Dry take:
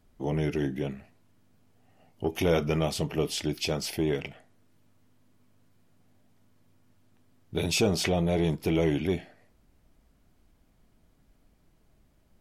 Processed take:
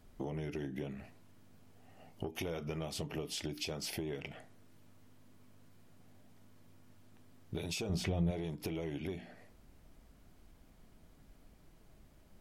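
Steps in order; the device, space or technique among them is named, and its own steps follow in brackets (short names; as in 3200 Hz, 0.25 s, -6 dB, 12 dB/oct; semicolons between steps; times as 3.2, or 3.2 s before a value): notches 60/120/180/240/300 Hz; serial compression, peaks first (compressor 6:1, threshold -36 dBFS, peak gain reduction 15 dB; compressor 2:1, threshold -43 dBFS, peak gain reduction 6 dB); 7.89–8.31 tone controls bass +11 dB, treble -3 dB; gain +3.5 dB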